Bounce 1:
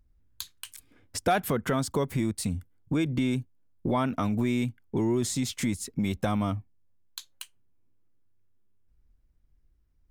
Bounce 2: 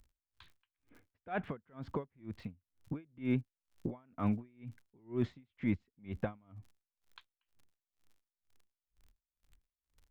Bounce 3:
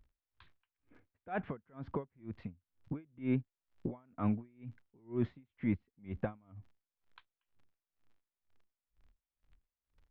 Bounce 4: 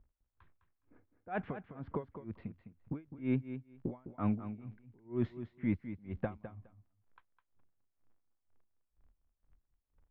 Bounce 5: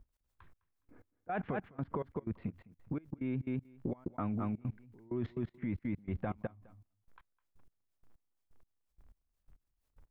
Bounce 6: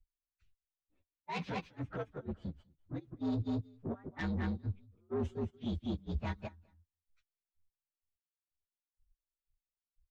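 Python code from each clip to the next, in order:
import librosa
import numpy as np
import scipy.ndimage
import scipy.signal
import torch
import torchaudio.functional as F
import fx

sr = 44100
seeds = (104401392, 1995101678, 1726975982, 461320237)

y1 = scipy.signal.sosfilt(scipy.signal.butter(4, 2600.0, 'lowpass', fs=sr, output='sos'), x)
y1 = fx.dmg_crackle(y1, sr, seeds[0], per_s=75.0, level_db=-50.0)
y1 = y1 * 10.0 ** (-38 * (0.5 - 0.5 * np.cos(2.0 * np.pi * 2.1 * np.arange(len(y1)) / sr)) / 20.0)
y1 = F.gain(torch.from_numpy(y1), -1.5).numpy()
y2 = scipy.signal.sosfilt(scipy.signal.bessel(2, 2300.0, 'lowpass', norm='mag', fs=sr, output='sos'), y1)
y2 = fx.wow_flutter(y2, sr, seeds[1], rate_hz=2.1, depth_cents=29.0)
y3 = fx.env_lowpass(y2, sr, base_hz=1200.0, full_db=-31.5)
y3 = fx.echo_feedback(y3, sr, ms=207, feedback_pct=15, wet_db=-11)
y4 = fx.level_steps(y3, sr, step_db=23)
y4 = F.gain(torch.from_numpy(y4), 11.5).numpy()
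y5 = fx.partial_stretch(y4, sr, pct=123)
y5 = 10.0 ** (-36.0 / 20.0) * np.tanh(y5 / 10.0 ** (-36.0 / 20.0))
y5 = fx.band_widen(y5, sr, depth_pct=100)
y5 = F.gain(torch.from_numpy(y5), 4.0).numpy()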